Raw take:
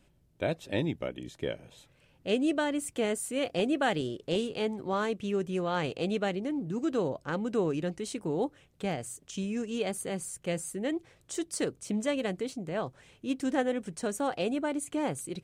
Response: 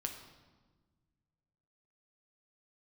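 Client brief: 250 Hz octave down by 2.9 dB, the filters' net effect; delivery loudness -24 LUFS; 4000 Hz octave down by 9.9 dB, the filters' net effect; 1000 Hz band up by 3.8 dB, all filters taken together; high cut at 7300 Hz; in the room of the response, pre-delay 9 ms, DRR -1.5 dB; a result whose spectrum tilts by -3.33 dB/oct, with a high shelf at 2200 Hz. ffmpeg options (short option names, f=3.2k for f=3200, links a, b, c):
-filter_complex "[0:a]lowpass=7.3k,equalizer=f=250:t=o:g=-4,equalizer=f=1k:t=o:g=7,highshelf=f=2.2k:g=-6.5,equalizer=f=4k:t=o:g=-8.5,asplit=2[a][b];[1:a]atrim=start_sample=2205,adelay=9[c];[b][c]afir=irnorm=-1:irlink=0,volume=2dB[d];[a][d]amix=inputs=2:normalize=0,volume=5dB"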